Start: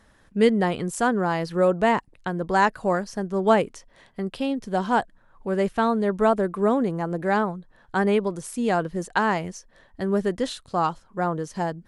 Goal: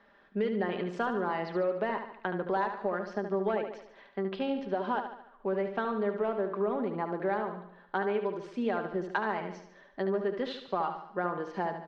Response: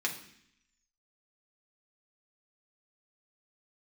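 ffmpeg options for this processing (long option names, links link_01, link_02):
-filter_complex "[0:a]lowpass=frequency=5500:width=0.5412,lowpass=frequency=5500:width=1.3066,acrossover=split=240 3900:gain=0.112 1 0.141[link_01][link_02][link_03];[link_01][link_02][link_03]amix=inputs=3:normalize=0,acontrast=59,highshelf=frequency=4200:gain=-4,aecho=1:1:5:0.4,acompressor=threshold=-20dB:ratio=6,atempo=1,asplit=2[link_04][link_05];[link_05]aecho=0:1:73|146|219|292|365|438:0.398|0.199|0.0995|0.0498|0.0249|0.0124[link_06];[link_04][link_06]amix=inputs=2:normalize=0,volume=-7.5dB"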